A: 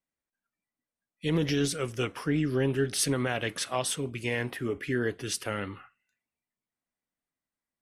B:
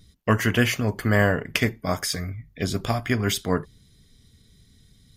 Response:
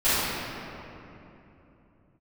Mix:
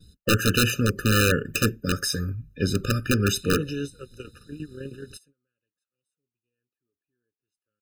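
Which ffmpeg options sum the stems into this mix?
-filter_complex "[0:a]adynamicequalizer=threshold=0.00891:dfrequency=6900:dqfactor=0.7:tfrequency=6900:tqfactor=0.7:attack=5:release=100:ratio=0.375:range=2:mode=boostabove:tftype=highshelf,adelay=2200,volume=0.708[s0];[1:a]volume=1.33,asplit=2[s1][s2];[s2]apad=whole_len=441548[s3];[s0][s3]sidechaingate=range=0.0282:threshold=0.00316:ratio=16:detection=peak[s4];[s4][s1]amix=inputs=2:normalize=0,aeval=exprs='(mod(3.35*val(0)+1,2)-1)/3.35':c=same,agate=range=0.1:threshold=0.002:ratio=16:detection=peak,afftfilt=real='re*eq(mod(floor(b*sr/1024/600),2),0)':imag='im*eq(mod(floor(b*sr/1024/600),2),0)':win_size=1024:overlap=0.75"

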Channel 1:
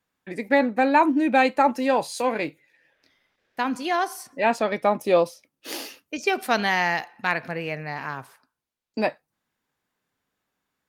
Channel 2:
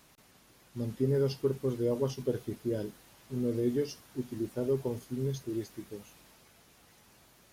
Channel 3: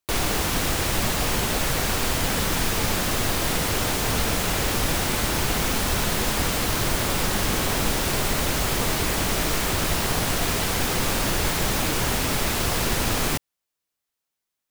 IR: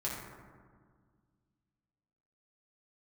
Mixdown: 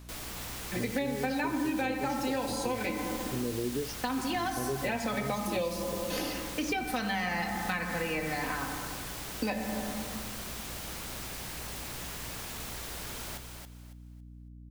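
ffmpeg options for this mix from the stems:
-filter_complex "[0:a]aecho=1:1:3.9:0.87,adelay=450,volume=0.668,asplit=2[s0][s1];[s1]volume=0.631[s2];[1:a]acontrast=38,volume=0.708[s3];[2:a]aeval=exprs='0.0562*(abs(mod(val(0)/0.0562+3,4)-2)-1)':c=same,volume=0.266,asplit=2[s4][s5];[s5]volume=0.473[s6];[3:a]atrim=start_sample=2205[s7];[s2][s7]afir=irnorm=-1:irlink=0[s8];[s6]aecho=0:1:277|554|831|1108:1|0.24|0.0576|0.0138[s9];[s0][s3][s4][s8][s9]amix=inputs=5:normalize=0,acrossover=split=280|2200[s10][s11][s12];[s10]acompressor=threshold=0.0178:ratio=4[s13];[s11]acompressor=threshold=0.0251:ratio=4[s14];[s12]acompressor=threshold=0.0141:ratio=4[s15];[s13][s14][s15]amix=inputs=3:normalize=0,aeval=exprs='val(0)+0.00447*(sin(2*PI*60*n/s)+sin(2*PI*2*60*n/s)/2+sin(2*PI*3*60*n/s)/3+sin(2*PI*4*60*n/s)/4+sin(2*PI*5*60*n/s)/5)':c=same,acompressor=threshold=0.0398:ratio=3"

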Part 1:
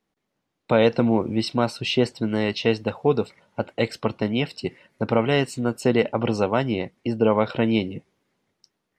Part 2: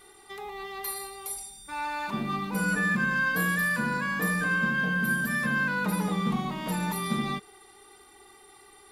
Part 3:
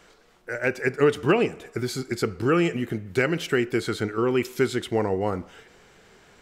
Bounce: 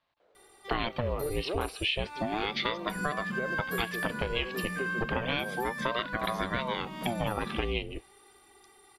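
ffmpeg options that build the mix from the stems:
-filter_complex "[0:a]lowpass=f=3000:t=q:w=2.4,equalizer=f=440:t=o:w=0.44:g=-12.5,aeval=exprs='val(0)*sin(2*PI*520*n/s+520*0.7/0.32*sin(2*PI*0.32*n/s))':c=same,volume=1.26[s0];[1:a]adelay=350,volume=0.562[s1];[2:a]bandpass=f=580:t=q:w=2.9:csg=0,adelay=200,volume=0.668[s2];[s0][s1][s2]amix=inputs=3:normalize=0,acompressor=threshold=0.0398:ratio=4"

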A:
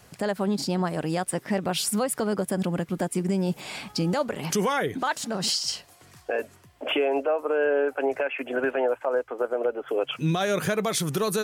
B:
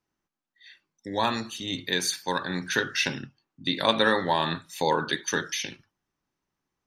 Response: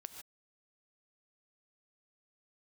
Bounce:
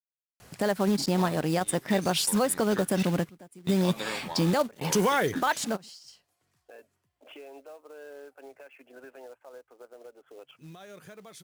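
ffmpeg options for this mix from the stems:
-filter_complex "[0:a]acrusher=bits=4:mode=log:mix=0:aa=0.000001,adelay=400,volume=1.06[s0];[1:a]bandreject=f=50:t=h:w=6,bandreject=f=100:t=h:w=6,bandreject=f=150:t=h:w=6,bandreject=f=200:t=h:w=6,bandreject=f=250:t=h:w=6,aeval=exprs='sgn(val(0))*max(abs(val(0))-0.0133,0)':c=same,volume=0.224,asplit=2[s1][s2];[s2]apad=whole_len=521984[s3];[s0][s3]sidechaingate=range=0.0708:threshold=0.00112:ratio=16:detection=peak[s4];[s4][s1]amix=inputs=2:normalize=0"

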